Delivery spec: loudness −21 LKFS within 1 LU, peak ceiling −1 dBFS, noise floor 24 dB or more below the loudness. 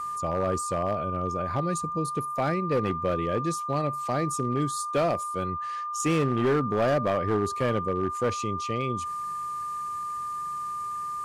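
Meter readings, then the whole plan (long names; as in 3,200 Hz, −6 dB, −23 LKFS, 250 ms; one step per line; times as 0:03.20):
share of clipped samples 1.4%; peaks flattened at −19.0 dBFS; interfering tone 1,200 Hz; level of the tone −30 dBFS; integrated loudness −28.0 LKFS; sample peak −19.0 dBFS; target loudness −21.0 LKFS
→ clipped peaks rebuilt −19 dBFS
notch filter 1,200 Hz, Q 30
level +7 dB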